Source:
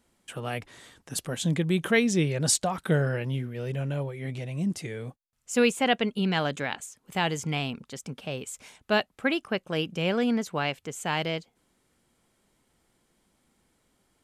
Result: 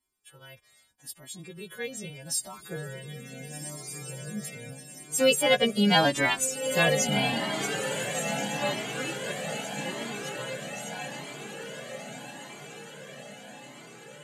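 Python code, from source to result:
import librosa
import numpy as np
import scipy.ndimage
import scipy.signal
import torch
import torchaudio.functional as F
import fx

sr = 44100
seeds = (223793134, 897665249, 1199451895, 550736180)

p1 = fx.freq_snap(x, sr, grid_st=2)
p2 = fx.doppler_pass(p1, sr, speed_mps=23, closest_m=13.0, pass_at_s=6.22)
p3 = fx.dynamic_eq(p2, sr, hz=430.0, q=0.81, threshold_db=-44.0, ratio=4.0, max_db=6)
p4 = p3 + fx.echo_diffused(p3, sr, ms=1522, feedback_pct=57, wet_db=-6.5, dry=0)
p5 = fx.comb_cascade(p4, sr, direction='rising', hz=0.8)
y = p5 * 10.0 ** (7.5 / 20.0)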